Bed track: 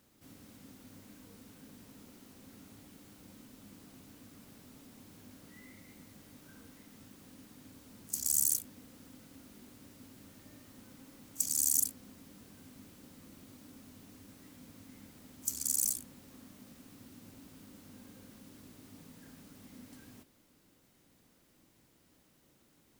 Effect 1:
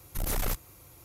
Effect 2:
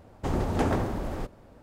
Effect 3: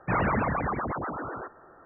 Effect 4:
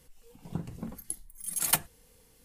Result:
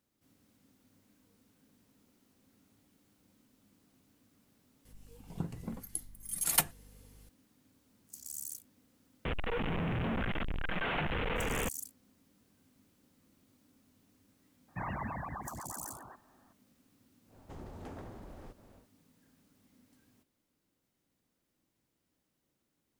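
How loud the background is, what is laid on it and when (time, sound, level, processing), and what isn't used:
bed track -13.5 dB
4.85 s: add 4 -2 dB + hum 50 Hz, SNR 20 dB
9.25 s: add 4 -8 dB + one-bit delta coder 16 kbps, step -19 dBFS
14.68 s: add 3 -14.5 dB + comb 1.1 ms, depth 63%
17.26 s: add 2 -7 dB, fades 0.10 s + compression 2:1, threshold -47 dBFS
not used: 1

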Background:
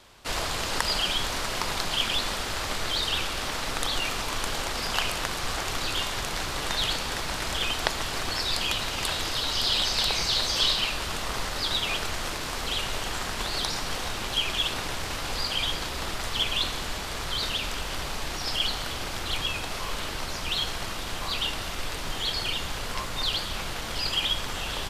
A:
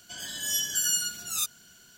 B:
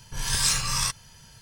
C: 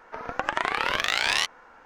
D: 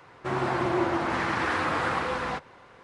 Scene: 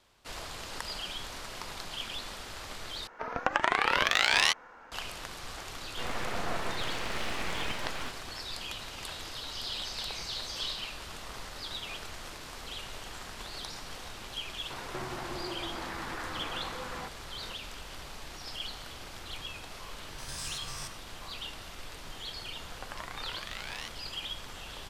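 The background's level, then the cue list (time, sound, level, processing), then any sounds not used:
background -12 dB
3.07 s: replace with C -0.5 dB
5.73 s: add D -5.5 dB + full-wave rectifier
14.70 s: add D -13 dB + three bands compressed up and down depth 100%
19.99 s: add B -14.5 dB + spectrogram pixelated in time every 100 ms
22.43 s: add C -17.5 dB
not used: A

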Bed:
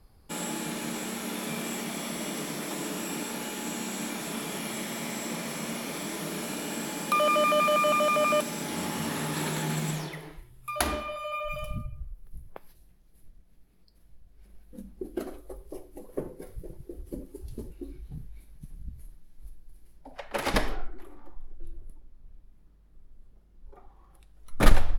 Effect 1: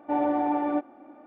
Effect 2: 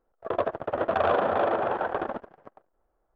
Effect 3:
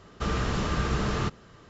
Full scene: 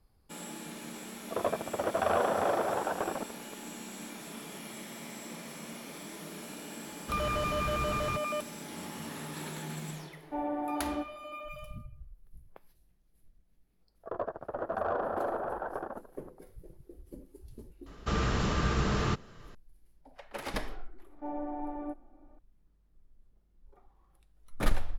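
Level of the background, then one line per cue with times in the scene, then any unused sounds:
bed -9.5 dB
1.06 s: add 2 -4.5 dB
6.88 s: add 3 -8.5 dB
10.23 s: add 1 -9 dB
13.81 s: add 2 -8.5 dB + high-order bell 2.8 kHz -12 dB 1.2 oct
17.86 s: add 3 -1.5 dB
21.13 s: add 1 -11.5 dB + low-pass 1.1 kHz 6 dB/octave

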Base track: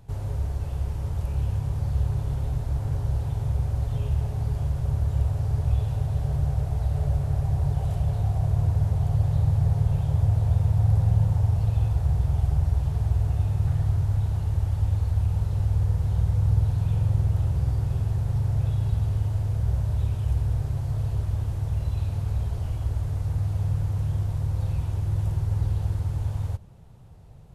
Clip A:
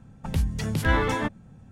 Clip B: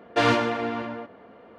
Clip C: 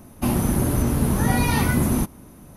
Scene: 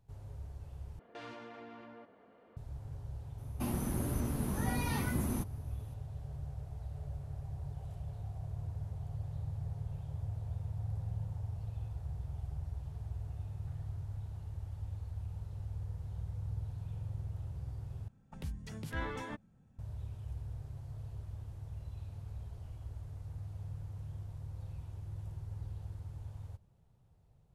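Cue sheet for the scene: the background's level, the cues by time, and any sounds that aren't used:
base track -18 dB
0.99 s: replace with B -13 dB + compression 3:1, threshold -36 dBFS
3.38 s: add C -14.5 dB
18.08 s: replace with A -16 dB

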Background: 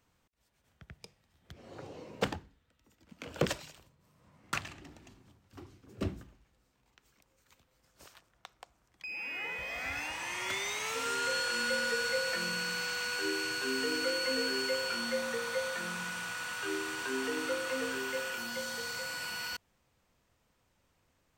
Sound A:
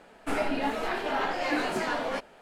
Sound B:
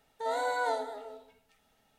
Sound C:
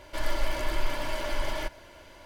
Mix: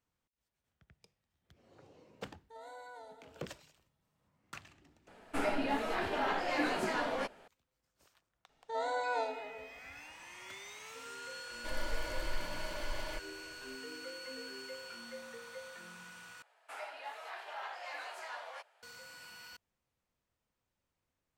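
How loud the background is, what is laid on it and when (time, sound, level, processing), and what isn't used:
background -13.5 dB
2.30 s: add B -17.5 dB + peak limiter -24 dBFS
5.07 s: add A -4.5 dB
8.49 s: add B -4 dB + low-pass 7.2 kHz 24 dB/octave
11.51 s: add C -9.5 dB
16.42 s: replace with A -13 dB + high-pass 650 Hz 24 dB/octave

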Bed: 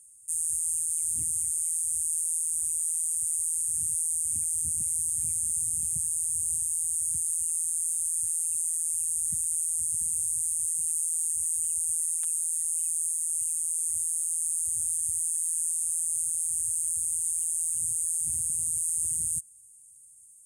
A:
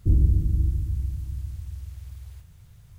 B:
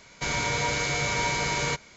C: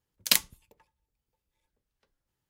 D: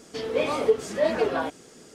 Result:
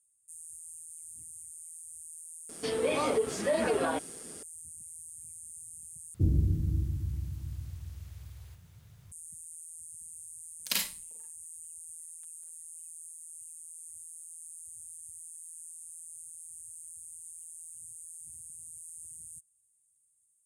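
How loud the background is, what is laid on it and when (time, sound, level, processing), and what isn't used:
bed -18 dB
2.49 s: add D -0.5 dB + peak limiter -19.5 dBFS
6.14 s: replace with A -1.5 dB + high-pass 93 Hz
10.40 s: add C -10 dB + Schroeder reverb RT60 0.31 s, combs from 33 ms, DRR -1.5 dB
not used: B

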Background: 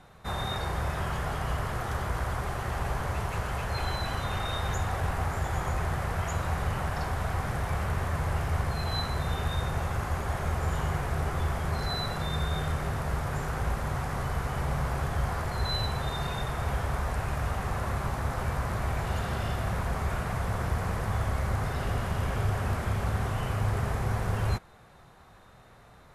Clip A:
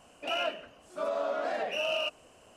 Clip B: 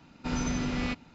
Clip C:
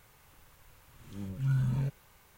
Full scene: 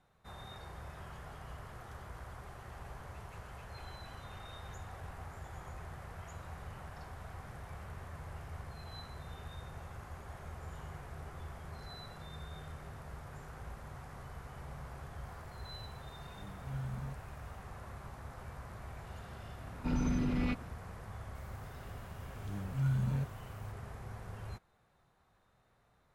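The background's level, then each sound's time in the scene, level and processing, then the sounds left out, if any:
background -17 dB
15.25 s: add C -11.5 dB
19.60 s: add B -1.5 dB + resonances exaggerated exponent 1.5
21.35 s: add C -3 dB
not used: A

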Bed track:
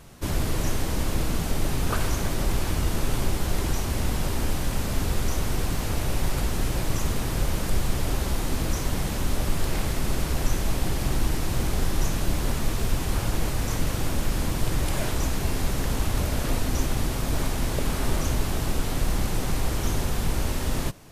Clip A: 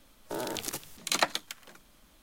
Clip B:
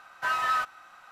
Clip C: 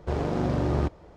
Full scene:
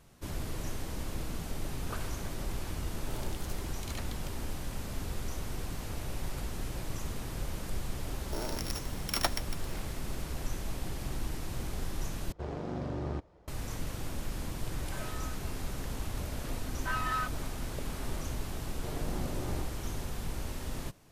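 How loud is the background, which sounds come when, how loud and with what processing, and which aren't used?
bed track -11.5 dB
2.76 s: add A -11.5 dB + peak limiter -20 dBFS
8.02 s: add A -4 dB + sorted samples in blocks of 8 samples
12.32 s: replace with C -10.5 dB
14.70 s: add B -7 dB + compression, threshold -40 dBFS
16.63 s: add B -7 dB
18.76 s: add C -13 dB

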